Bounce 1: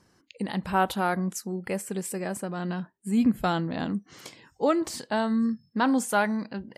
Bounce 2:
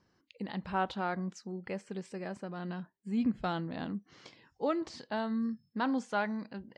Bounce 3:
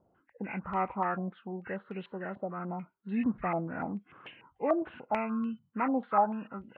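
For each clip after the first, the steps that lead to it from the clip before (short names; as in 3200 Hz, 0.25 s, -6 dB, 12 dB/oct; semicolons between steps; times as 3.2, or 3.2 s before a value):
LPF 5500 Hz 24 dB/oct; gain -8 dB
nonlinear frequency compression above 1000 Hz 1.5:1; stepped low-pass 6.8 Hz 680–2800 Hz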